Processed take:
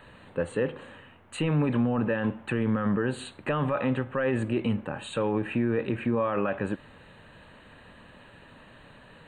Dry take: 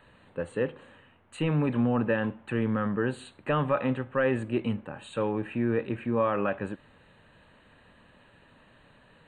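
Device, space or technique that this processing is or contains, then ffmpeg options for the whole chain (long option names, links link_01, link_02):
stacked limiters: -af "alimiter=limit=-20.5dB:level=0:latency=1:release=24,alimiter=level_in=0.5dB:limit=-24dB:level=0:latency=1:release=106,volume=-0.5dB,volume=6.5dB"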